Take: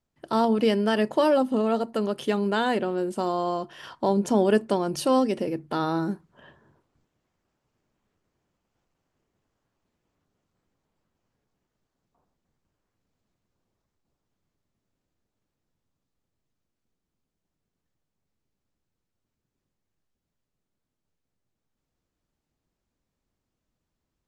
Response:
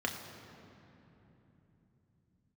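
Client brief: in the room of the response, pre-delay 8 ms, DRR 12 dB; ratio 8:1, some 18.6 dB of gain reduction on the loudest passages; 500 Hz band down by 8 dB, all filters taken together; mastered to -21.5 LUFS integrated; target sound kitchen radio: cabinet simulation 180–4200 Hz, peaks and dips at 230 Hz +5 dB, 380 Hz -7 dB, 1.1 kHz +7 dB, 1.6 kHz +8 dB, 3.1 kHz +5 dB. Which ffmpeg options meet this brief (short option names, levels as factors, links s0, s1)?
-filter_complex "[0:a]equalizer=f=500:t=o:g=-8,acompressor=threshold=0.01:ratio=8,asplit=2[s0][s1];[1:a]atrim=start_sample=2205,adelay=8[s2];[s1][s2]afir=irnorm=-1:irlink=0,volume=0.133[s3];[s0][s3]amix=inputs=2:normalize=0,highpass=180,equalizer=f=230:t=q:w=4:g=5,equalizer=f=380:t=q:w=4:g=-7,equalizer=f=1100:t=q:w=4:g=7,equalizer=f=1600:t=q:w=4:g=8,equalizer=f=3100:t=q:w=4:g=5,lowpass=f=4200:w=0.5412,lowpass=f=4200:w=1.3066,volume=10.6"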